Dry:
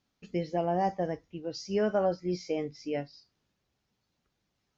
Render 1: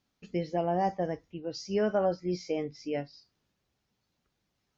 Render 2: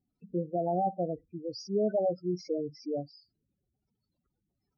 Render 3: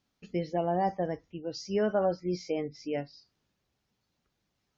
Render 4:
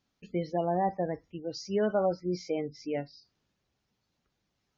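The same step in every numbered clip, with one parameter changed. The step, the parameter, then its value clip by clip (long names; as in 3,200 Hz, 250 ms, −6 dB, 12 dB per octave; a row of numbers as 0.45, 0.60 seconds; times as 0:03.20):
gate on every frequency bin, under each frame's peak: −55, −10, −40, −30 decibels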